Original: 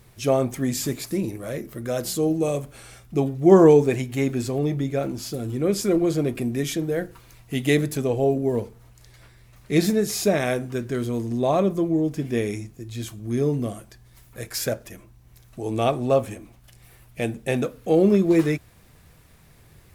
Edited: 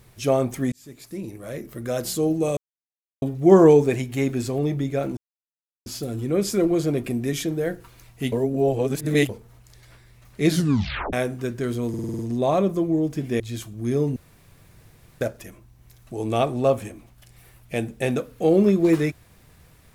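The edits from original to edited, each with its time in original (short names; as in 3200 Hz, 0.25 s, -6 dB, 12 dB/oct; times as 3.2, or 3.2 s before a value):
0.72–1.84 fade in
2.57–3.22 mute
5.17 insert silence 0.69 s
7.63–8.6 reverse
9.79 tape stop 0.65 s
11.2 stutter 0.05 s, 7 plays
12.41–12.86 cut
13.62–14.67 room tone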